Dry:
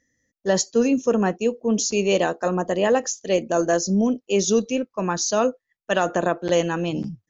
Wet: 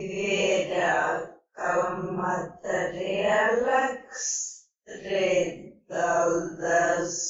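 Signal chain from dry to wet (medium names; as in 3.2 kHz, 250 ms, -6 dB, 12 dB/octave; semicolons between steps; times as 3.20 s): Paulstretch 4×, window 0.05 s, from 2.02 s; graphic EQ 125/250/500/2000/4000 Hz -7/-10/-4/+4/-11 dB; expander -40 dBFS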